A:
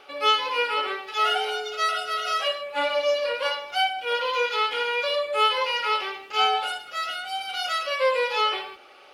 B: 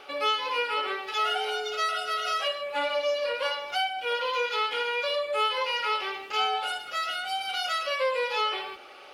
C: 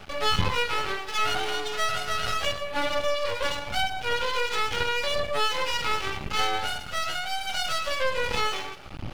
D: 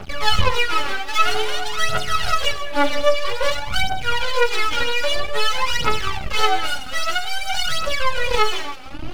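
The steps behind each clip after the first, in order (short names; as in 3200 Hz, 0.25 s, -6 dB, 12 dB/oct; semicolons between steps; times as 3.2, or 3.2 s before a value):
compressor 2:1, threshold -32 dBFS, peak gain reduction 9 dB; gain +2.5 dB
wind noise 130 Hz -41 dBFS; half-wave rectifier; gain +5 dB
phaser 0.51 Hz, delay 4 ms, feedback 69%; gain +3 dB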